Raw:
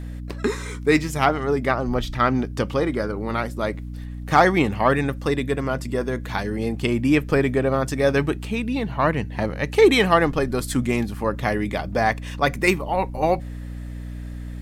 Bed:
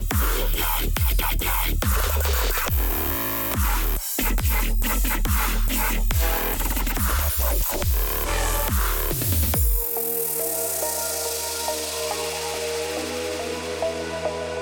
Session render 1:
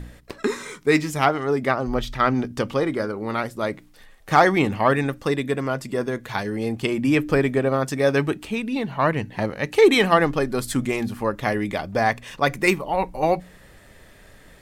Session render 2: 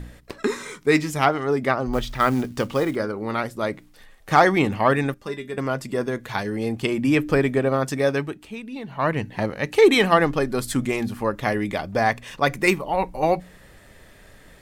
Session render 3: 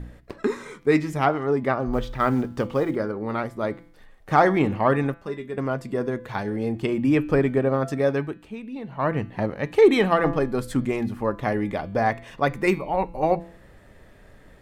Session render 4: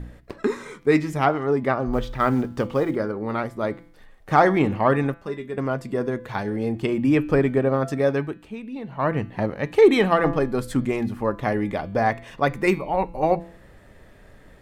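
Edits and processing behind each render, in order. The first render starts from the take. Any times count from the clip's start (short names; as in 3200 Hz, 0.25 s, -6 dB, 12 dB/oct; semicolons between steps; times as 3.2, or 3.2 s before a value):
de-hum 60 Hz, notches 5
1.93–2.96 companded quantiser 6-bit; 5.14–5.58 resonator 200 Hz, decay 0.16 s, mix 80%; 7.97–9.18 dip -8.5 dB, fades 0.36 s
high shelf 2200 Hz -11.5 dB; de-hum 168.4 Hz, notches 28
gain +1 dB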